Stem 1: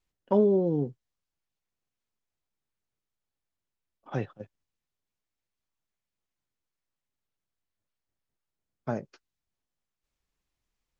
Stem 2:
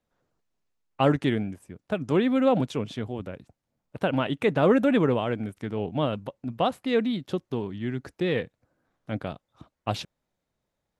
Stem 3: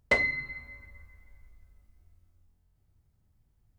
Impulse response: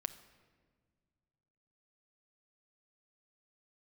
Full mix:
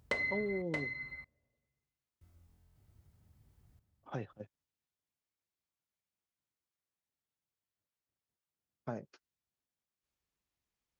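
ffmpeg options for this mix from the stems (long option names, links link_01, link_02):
-filter_complex "[0:a]volume=-5dB[link_01];[2:a]volume=2.5dB,asplit=3[link_02][link_03][link_04];[link_02]atrim=end=0.62,asetpts=PTS-STARTPTS,afade=type=out:start_time=0.616:duration=0.004:curve=hsin[link_05];[link_03]atrim=start=0.62:end=2.21,asetpts=PTS-STARTPTS,volume=0[link_06];[link_04]atrim=start=2.21,asetpts=PTS-STARTPTS,afade=type=in:duration=0.004:curve=hsin[link_07];[link_05][link_06][link_07]concat=n=3:v=0:a=1,asplit=3[link_08][link_09][link_10];[link_09]volume=-8dB[link_11];[link_10]volume=-8.5dB[link_12];[link_08]alimiter=limit=-19.5dB:level=0:latency=1:release=283,volume=0dB[link_13];[3:a]atrim=start_sample=2205[link_14];[link_11][link_14]afir=irnorm=-1:irlink=0[link_15];[link_12]aecho=0:1:625:1[link_16];[link_01][link_13][link_15][link_16]amix=inputs=4:normalize=0,highpass=57,acompressor=threshold=-37dB:ratio=2.5"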